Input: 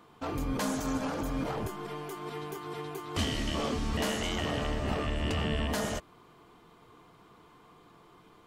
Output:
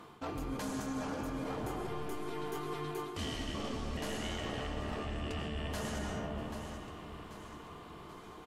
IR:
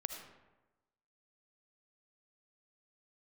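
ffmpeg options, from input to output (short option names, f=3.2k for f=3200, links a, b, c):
-filter_complex "[0:a]aecho=1:1:786|1572|2358:0.0794|0.0389|0.0191[a];[1:a]atrim=start_sample=2205,asetrate=25578,aresample=44100[b];[a][b]afir=irnorm=-1:irlink=0,areverse,acompressor=threshold=-39dB:ratio=10,areverse,volume=4dB"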